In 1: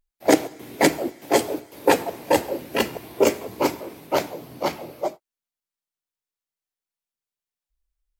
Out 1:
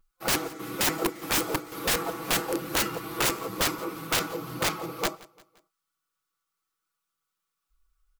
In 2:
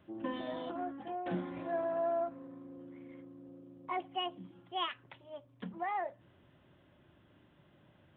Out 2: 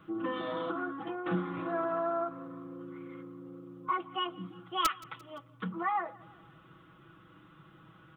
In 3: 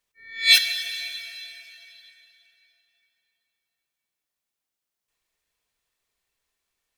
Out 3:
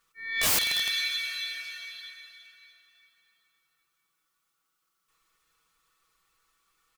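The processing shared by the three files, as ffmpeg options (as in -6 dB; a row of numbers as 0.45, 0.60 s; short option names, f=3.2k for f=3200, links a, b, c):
-af "superequalizer=8b=0.447:10b=3.98,acompressor=threshold=-40dB:ratio=1.5,aecho=1:1:6.1:0.74,aeval=exprs='(mod(14.1*val(0)+1,2)-1)/14.1':c=same,aecho=1:1:173|346|519:0.075|0.0367|0.018,volume=4.5dB"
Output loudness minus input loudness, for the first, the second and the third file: -4.5, +3.0, -6.5 LU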